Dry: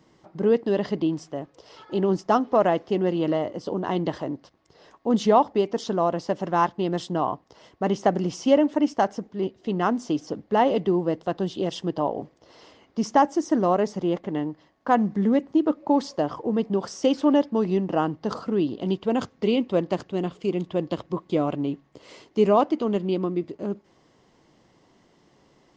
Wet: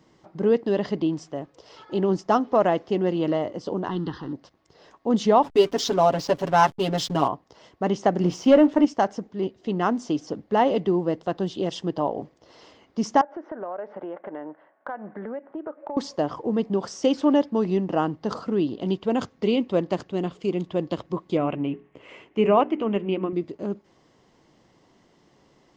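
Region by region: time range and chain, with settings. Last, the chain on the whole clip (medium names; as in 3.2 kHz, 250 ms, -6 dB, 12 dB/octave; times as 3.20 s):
3.88–4.33 s: companding laws mixed up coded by mu + distance through air 100 m + static phaser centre 2.3 kHz, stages 6
5.43–7.28 s: peaking EQ 5.2 kHz +9 dB 2.2 oct + comb 7.2 ms, depth 95% + hysteresis with a dead band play -33 dBFS
8.20–8.85 s: waveshaping leveller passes 1 + treble shelf 5.3 kHz -8.5 dB + doubling 23 ms -13 dB
13.21–15.97 s: cabinet simulation 380–2200 Hz, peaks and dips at 600 Hz +9 dB, 860 Hz +4 dB, 1.5 kHz +10 dB + compression 5:1, threshold -31 dBFS
21.37–23.33 s: resonant high shelf 3.4 kHz -9 dB, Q 3 + hum notches 60/120/180/240/300/360/420 Hz
whole clip: none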